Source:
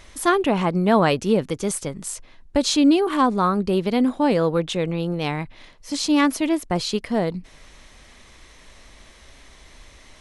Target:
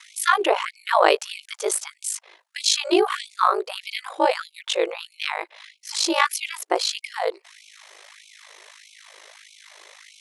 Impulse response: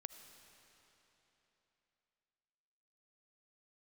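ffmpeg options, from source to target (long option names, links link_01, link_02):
-af "aeval=exprs='val(0)*sin(2*PI*26*n/s)':channel_layout=same,afftfilt=real='re*gte(b*sr/1024,320*pow(2200/320,0.5+0.5*sin(2*PI*1.6*pts/sr)))':imag='im*gte(b*sr/1024,320*pow(2200/320,0.5+0.5*sin(2*PI*1.6*pts/sr)))':win_size=1024:overlap=0.75,volume=6.5dB"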